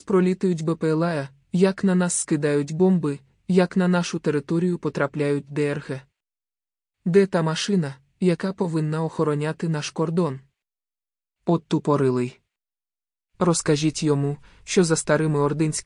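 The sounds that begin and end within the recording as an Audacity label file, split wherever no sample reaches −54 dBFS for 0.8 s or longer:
7.050000	10.460000	sound
11.470000	12.370000	sound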